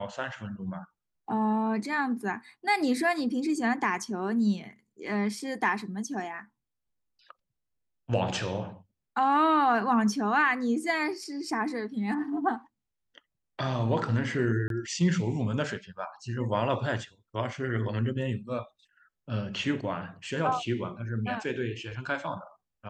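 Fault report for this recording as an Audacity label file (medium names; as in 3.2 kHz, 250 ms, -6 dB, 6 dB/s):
14.680000	14.700000	dropout 22 ms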